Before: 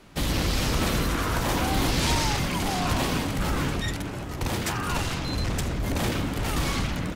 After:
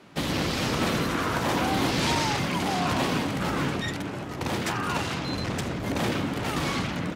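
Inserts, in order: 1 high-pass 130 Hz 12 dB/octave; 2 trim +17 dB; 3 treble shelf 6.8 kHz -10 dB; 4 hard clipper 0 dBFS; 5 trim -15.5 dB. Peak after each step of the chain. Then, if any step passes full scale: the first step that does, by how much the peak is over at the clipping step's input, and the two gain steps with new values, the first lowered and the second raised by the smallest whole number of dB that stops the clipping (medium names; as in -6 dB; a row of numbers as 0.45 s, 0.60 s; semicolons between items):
-13.0 dBFS, +4.0 dBFS, +3.0 dBFS, 0.0 dBFS, -15.5 dBFS; step 2, 3.0 dB; step 2 +14 dB, step 5 -12.5 dB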